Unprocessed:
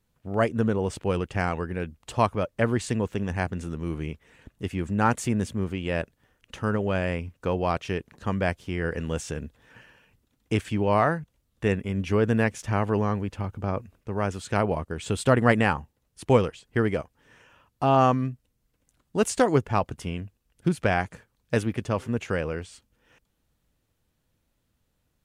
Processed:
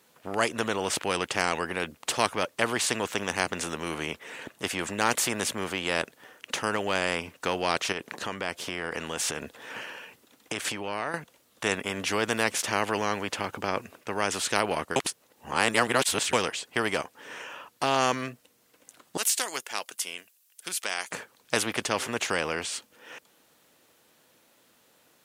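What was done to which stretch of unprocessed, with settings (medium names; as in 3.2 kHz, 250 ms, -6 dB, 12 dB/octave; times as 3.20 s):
7.92–11.14 s: compression, threshold -32 dBFS
14.96–16.33 s: reverse
19.17–21.11 s: differentiator
whole clip: high-pass 370 Hz 12 dB/octave; spectrum-flattening compressor 2:1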